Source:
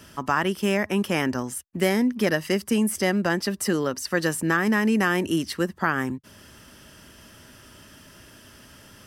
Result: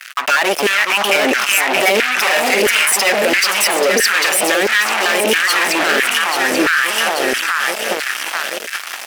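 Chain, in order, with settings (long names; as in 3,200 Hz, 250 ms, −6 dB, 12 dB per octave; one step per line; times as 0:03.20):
time-frequency cells dropped at random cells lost 22%
0:01.93–0:02.89: double-tracking delay 43 ms −7 dB
in parallel at 0 dB: downward compressor, threshold −31 dBFS, peak gain reduction 13.5 dB
on the sum: delay that swaps between a low-pass and a high-pass 417 ms, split 1,000 Hz, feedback 72%, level −4 dB
fuzz pedal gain 28 dB, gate −38 dBFS
auto-filter high-pass saw down 1.5 Hz 440–1,700 Hz
brickwall limiter −13 dBFS, peak gain reduction 10.5 dB
graphic EQ with 15 bands 100 Hz −6 dB, 1,000 Hz −7 dB, 2,500 Hz +6 dB
one half of a high-frequency compander decoder only
level +8 dB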